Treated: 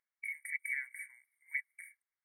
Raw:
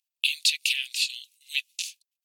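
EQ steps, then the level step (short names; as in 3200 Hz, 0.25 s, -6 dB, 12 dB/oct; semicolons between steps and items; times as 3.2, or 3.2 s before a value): HPF 1500 Hz 12 dB/oct; brick-wall FIR band-stop 2300–8500 Hz; air absorption 230 m; +12.0 dB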